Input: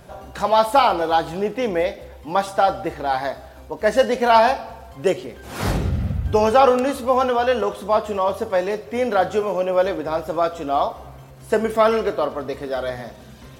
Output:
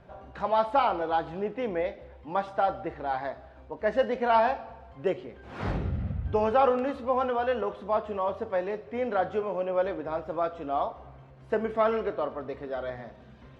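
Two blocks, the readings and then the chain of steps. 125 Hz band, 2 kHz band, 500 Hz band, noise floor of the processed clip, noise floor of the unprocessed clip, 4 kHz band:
-8.5 dB, -9.5 dB, -8.5 dB, -51 dBFS, -42 dBFS, -14.5 dB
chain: LPF 2600 Hz 12 dB/oct; gain -8.5 dB

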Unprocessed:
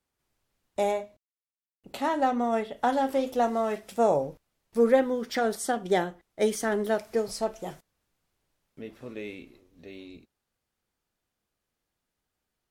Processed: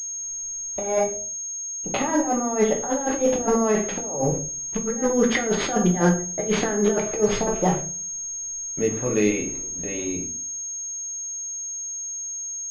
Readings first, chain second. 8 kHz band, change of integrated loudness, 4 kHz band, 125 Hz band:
+21.5 dB, +3.5 dB, +6.0 dB, +15.5 dB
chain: negative-ratio compressor -31 dBFS, ratio -0.5; shoebox room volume 32 m³, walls mixed, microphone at 0.45 m; pulse-width modulation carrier 6500 Hz; gain +8 dB

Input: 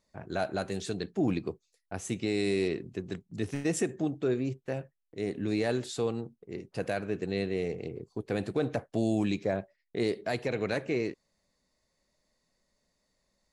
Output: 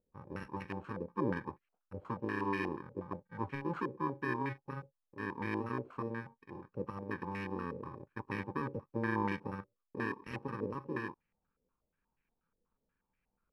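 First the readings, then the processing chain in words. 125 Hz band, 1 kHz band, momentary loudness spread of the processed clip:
-6.0 dB, +2.0 dB, 12 LU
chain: FFT order left unsorted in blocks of 64 samples; stepped low-pass 8.3 Hz 520–2000 Hz; gain -5.5 dB

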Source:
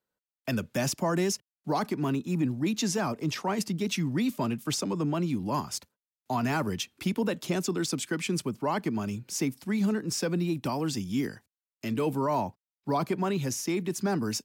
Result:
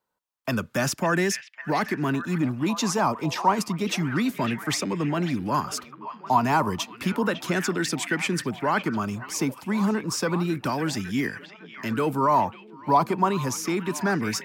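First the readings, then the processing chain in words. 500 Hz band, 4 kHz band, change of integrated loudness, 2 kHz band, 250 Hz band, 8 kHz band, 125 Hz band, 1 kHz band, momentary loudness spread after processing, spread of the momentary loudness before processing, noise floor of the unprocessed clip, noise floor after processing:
+3.5 dB, +3.5 dB, +4.5 dB, +8.5 dB, +2.5 dB, +2.5 dB, +2.5 dB, +9.0 dB, 7 LU, 5 LU, under -85 dBFS, -49 dBFS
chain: delay with a stepping band-pass 0.552 s, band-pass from 2500 Hz, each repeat -0.7 oct, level -7.5 dB; LFO bell 0.31 Hz 940–1900 Hz +11 dB; gain +2.5 dB

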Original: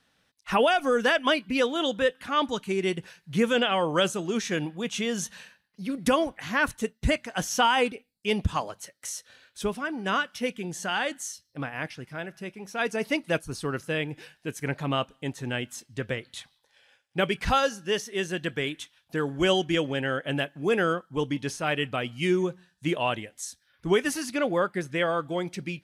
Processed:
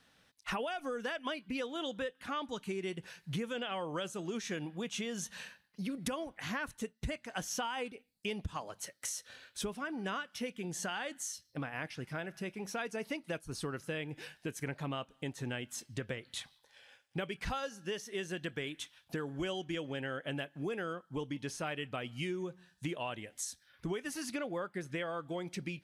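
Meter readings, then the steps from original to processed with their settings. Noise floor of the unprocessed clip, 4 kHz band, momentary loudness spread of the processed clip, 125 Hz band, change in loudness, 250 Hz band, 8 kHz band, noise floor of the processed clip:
-70 dBFS, -12.0 dB, 5 LU, -9.0 dB, -12.0 dB, -10.5 dB, -6.0 dB, -72 dBFS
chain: compressor 6:1, threshold -37 dBFS, peak gain reduction 18 dB; gain +1 dB

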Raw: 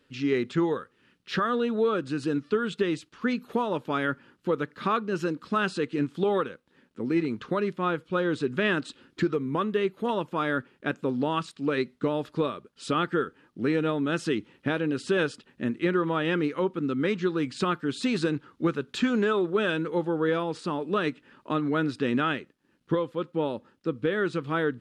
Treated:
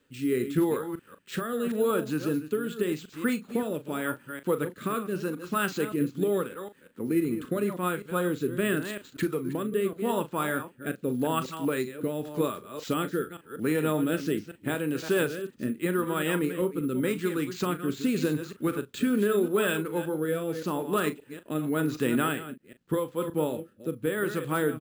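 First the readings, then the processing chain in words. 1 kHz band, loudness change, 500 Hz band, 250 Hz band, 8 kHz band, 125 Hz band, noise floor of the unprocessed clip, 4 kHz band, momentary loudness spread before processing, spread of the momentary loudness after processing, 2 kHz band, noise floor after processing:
-3.5 dB, -1.0 dB, -1.0 dB, -0.5 dB, +8.0 dB, -0.5 dB, -68 dBFS, -3.0 dB, 5 LU, 7 LU, -2.5 dB, -58 dBFS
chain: reverse delay 0.191 s, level -10 dB; rotary speaker horn 0.85 Hz; doubler 39 ms -12 dB; careless resampling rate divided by 4×, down none, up hold

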